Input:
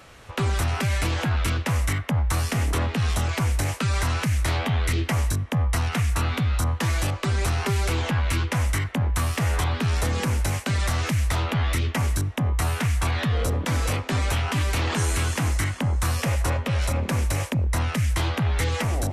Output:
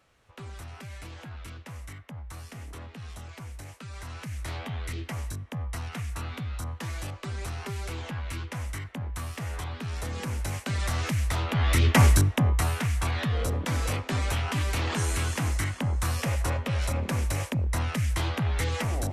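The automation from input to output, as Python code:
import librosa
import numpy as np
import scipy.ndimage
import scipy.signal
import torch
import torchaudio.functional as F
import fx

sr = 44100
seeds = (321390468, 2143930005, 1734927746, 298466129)

y = fx.gain(x, sr, db=fx.line((3.89, -18.0), (4.51, -11.0), (9.84, -11.0), (10.97, -4.0), (11.48, -4.0), (12.0, 7.0), (12.8, -4.0)))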